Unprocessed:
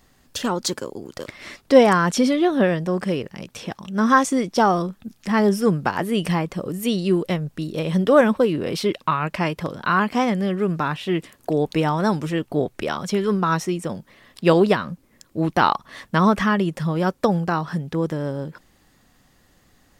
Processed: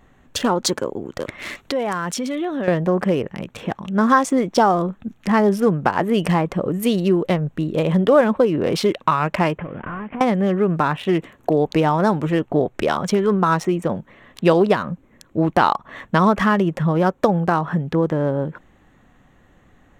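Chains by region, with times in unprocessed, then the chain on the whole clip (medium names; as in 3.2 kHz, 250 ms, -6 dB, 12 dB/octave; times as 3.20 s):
1.38–2.68 s: treble shelf 2.3 kHz +10 dB + compression 5:1, threshold -28 dBFS
9.58–10.21 s: CVSD coder 16 kbps + compression 8:1, threshold -31 dBFS + distance through air 72 m
whole clip: local Wiener filter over 9 samples; dynamic bell 720 Hz, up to +4 dB, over -32 dBFS, Q 0.83; compression 2:1, threshold -22 dBFS; trim +5.5 dB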